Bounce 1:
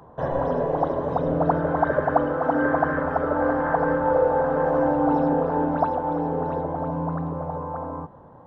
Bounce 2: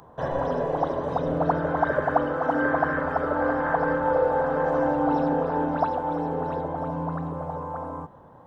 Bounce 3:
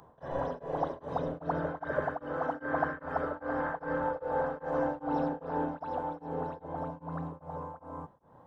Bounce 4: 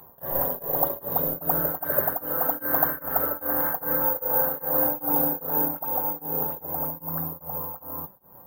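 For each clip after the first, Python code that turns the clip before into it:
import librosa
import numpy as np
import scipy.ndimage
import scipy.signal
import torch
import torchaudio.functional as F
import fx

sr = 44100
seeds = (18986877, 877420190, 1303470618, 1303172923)

y1 = fx.high_shelf(x, sr, hz=2200.0, db=11.0)
y1 = F.gain(torch.from_numpy(y1), -3.0).numpy()
y2 = y1 * np.abs(np.cos(np.pi * 2.5 * np.arange(len(y1)) / sr))
y2 = F.gain(torch.from_numpy(y2), -6.0).numpy()
y3 = (np.kron(scipy.signal.resample_poly(y2, 1, 3), np.eye(3)[0]) * 3)[:len(y2)]
y3 = fx.comb_fb(y3, sr, f0_hz=190.0, decay_s=0.16, harmonics='all', damping=0.0, mix_pct=60)
y3 = F.gain(torch.from_numpy(y3), 8.5).numpy()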